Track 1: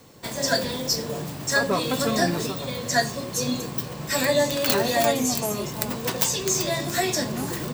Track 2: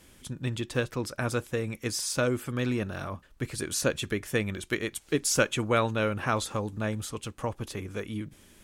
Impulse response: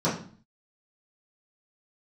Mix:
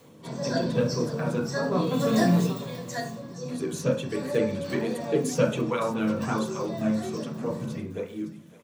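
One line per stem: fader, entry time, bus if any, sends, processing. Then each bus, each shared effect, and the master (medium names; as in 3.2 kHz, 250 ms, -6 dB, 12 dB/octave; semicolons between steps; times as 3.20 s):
2.31 s -4.5 dB -> 2.81 s -12 dB, 0.00 s, send -16 dB, echo send -22 dB, auto duck -23 dB, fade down 0.40 s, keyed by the second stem
-4.5 dB, 0.00 s, muted 1.50–3.48 s, send -10 dB, echo send -15 dB, de-hum 74.2 Hz, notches 2; cancelling through-zero flanger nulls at 1.3 Hz, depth 2.9 ms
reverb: on, RT60 0.45 s, pre-delay 3 ms
echo: feedback delay 563 ms, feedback 46%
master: none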